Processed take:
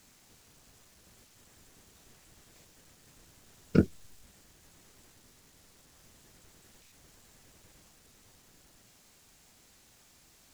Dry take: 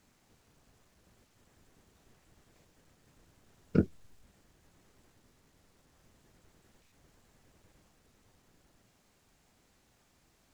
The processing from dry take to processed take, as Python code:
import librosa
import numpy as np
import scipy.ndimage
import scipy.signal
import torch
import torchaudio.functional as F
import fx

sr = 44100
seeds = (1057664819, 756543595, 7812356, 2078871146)

y = fx.high_shelf(x, sr, hz=2700.0, db=10.0)
y = F.gain(torch.from_numpy(y), 3.0).numpy()